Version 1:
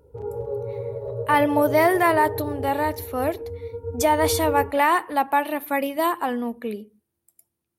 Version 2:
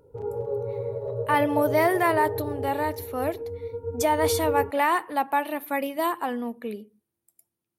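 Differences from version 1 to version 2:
speech −3.5 dB
master: add parametric band 67 Hz −14.5 dB 0.41 octaves

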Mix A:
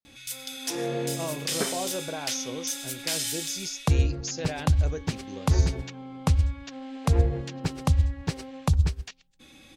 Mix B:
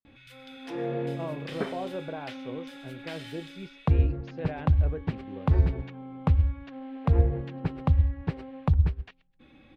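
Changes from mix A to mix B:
speech: add high-frequency loss of the air 150 metres
master: add high-frequency loss of the air 500 metres

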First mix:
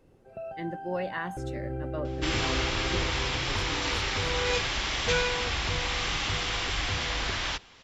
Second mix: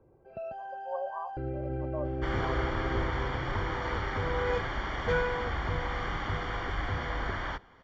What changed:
speech: add linear-phase brick-wall band-pass 530–1,200 Hz
second sound: add Savitzky-Golay smoothing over 41 samples

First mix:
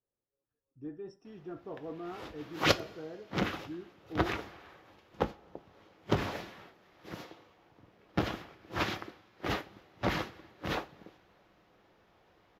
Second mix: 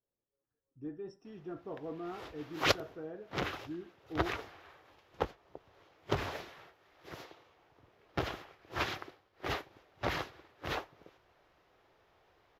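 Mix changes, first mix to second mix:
background: add parametric band 210 Hz −9.5 dB 0.88 octaves
reverb: off

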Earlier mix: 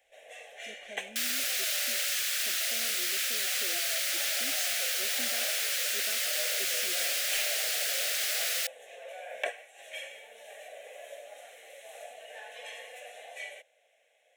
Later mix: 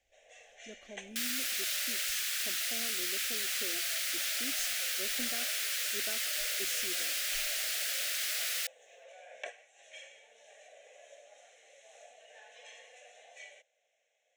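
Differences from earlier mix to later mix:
speech: add low-shelf EQ 170 Hz +11.5 dB
first sound: add transistor ladder low-pass 7,300 Hz, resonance 55%
second sound −3.5 dB

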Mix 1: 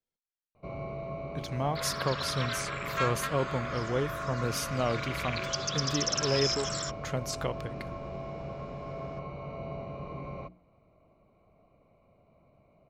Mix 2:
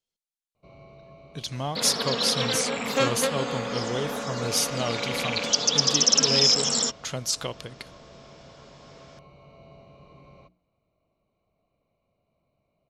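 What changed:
first sound −11.5 dB
second sound: remove Chebyshev high-pass with heavy ripple 1,000 Hz, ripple 3 dB
master: add flat-topped bell 5,700 Hz +11 dB 2.3 octaves

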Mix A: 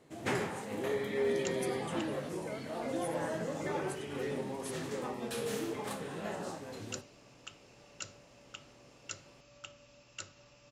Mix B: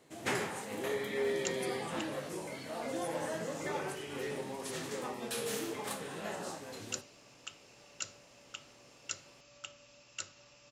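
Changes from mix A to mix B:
speech −7.0 dB
master: add spectral tilt +1.5 dB per octave

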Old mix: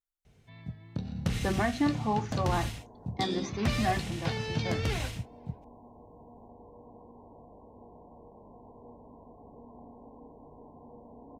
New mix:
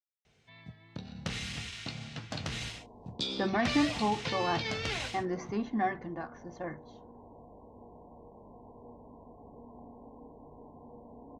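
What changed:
speech: entry +1.95 s
first sound: add spectral tilt +3 dB per octave
master: add high-frequency loss of the air 110 metres

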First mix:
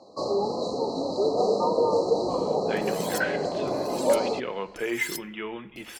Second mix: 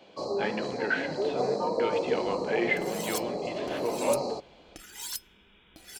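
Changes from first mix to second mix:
speech: entry −2.30 s
first sound −5.0 dB

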